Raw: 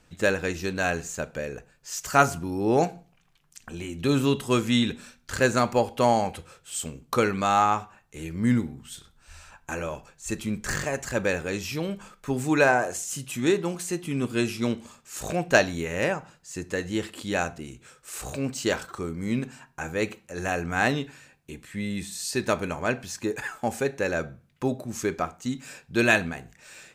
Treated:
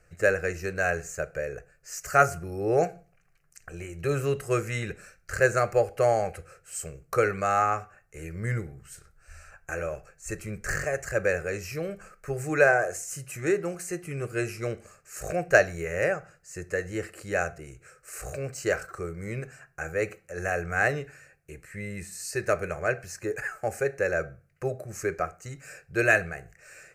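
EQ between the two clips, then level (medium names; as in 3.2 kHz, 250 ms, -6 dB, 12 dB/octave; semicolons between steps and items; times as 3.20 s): treble shelf 6.2 kHz -4.5 dB; static phaser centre 940 Hz, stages 6; +1.5 dB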